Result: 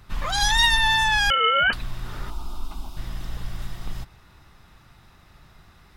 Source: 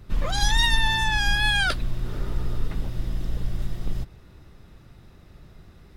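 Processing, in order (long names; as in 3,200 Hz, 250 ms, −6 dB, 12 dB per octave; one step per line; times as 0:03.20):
low shelf with overshoot 660 Hz −8 dB, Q 1.5
0:01.30–0:01.73: voice inversion scrambler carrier 3,000 Hz
0:02.30–0:02.97: phaser with its sweep stopped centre 490 Hz, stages 6
level +3.5 dB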